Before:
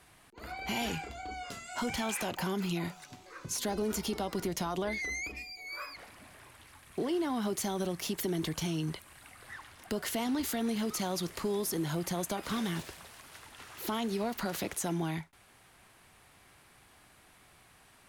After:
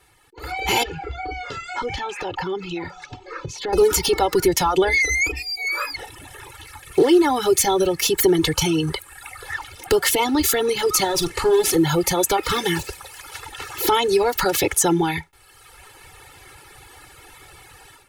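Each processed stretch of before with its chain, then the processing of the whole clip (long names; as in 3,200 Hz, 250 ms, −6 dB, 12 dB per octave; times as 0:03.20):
0:00.83–0:03.73: downward compressor 2.5 to 1, threshold −41 dBFS + high-frequency loss of the air 160 metres
0:11.04–0:11.76: variable-slope delta modulation 64 kbit/s + hard clipping −32.5 dBFS + double-tracking delay 47 ms −9 dB
whole clip: reverb reduction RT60 1.2 s; comb filter 2.3 ms, depth 94%; automatic gain control gain up to 15 dB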